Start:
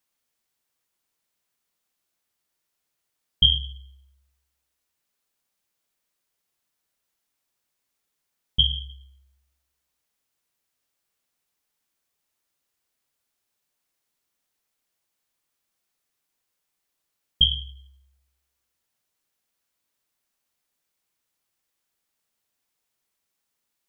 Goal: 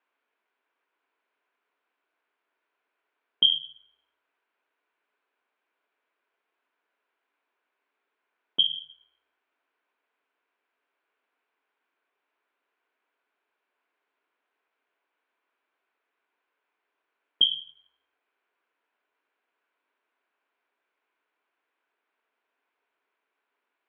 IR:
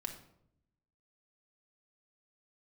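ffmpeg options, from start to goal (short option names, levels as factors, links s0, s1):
-af "highpass=f=270:w=0.5412,highpass=f=270:w=1.3066,equalizer=f=280:t=q:w=4:g=4,equalizer=f=420:t=q:w=4:g=8,equalizer=f=680:t=q:w=4:g=5,equalizer=f=1000:t=q:w=4:g=8,equalizer=f=1500:t=q:w=4:g=9,equalizer=f=2400:t=q:w=4:g=5,lowpass=f=3000:w=0.5412,lowpass=f=3000:w=1.3066,volume=1.12"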